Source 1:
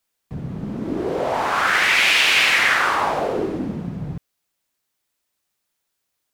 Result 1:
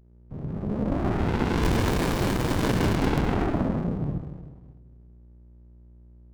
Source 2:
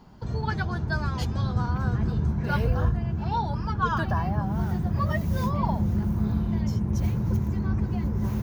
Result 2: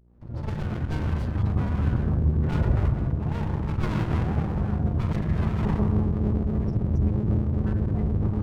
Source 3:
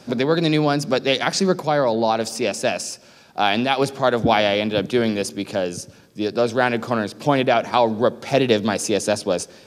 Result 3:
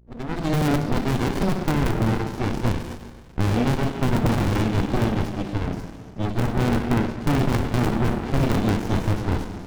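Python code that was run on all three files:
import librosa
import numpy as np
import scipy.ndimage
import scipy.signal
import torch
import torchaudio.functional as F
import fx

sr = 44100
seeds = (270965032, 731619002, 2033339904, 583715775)

y = fx.fade_in_head(x, sr, length_s=0.64)
y = fx.add_hum(y, sr, base_hz=60, snr_db=33)
y = scipy.signal.sosfilt(scipy.signal.bessel(2, 4800.0, 'lowpass', norm='mag', fs=sr, output='sos'), y)
y = fx.rev_schroeder(y, sr, rt60_s=1.6, comb_ms=26, drr_db=4.0)
y = fx.spec_gate(y, sr, threshold_db=-30, keep='strong')
y = (np.mod(10.0 ** (9.5 / 20.0) * y + 1.0, 2.0) - 1.0) / 10.0 ** (9.5 / 20.0)
y = fx.comb_fb(y, sr, f0_hz=510.0, decay_s=0.46, harmonics='all', damping=0.0, mix_pct=60)
y = fx.running_max(y, sr, window=65)
y = y * librosa.db_to_amplitude(8.5)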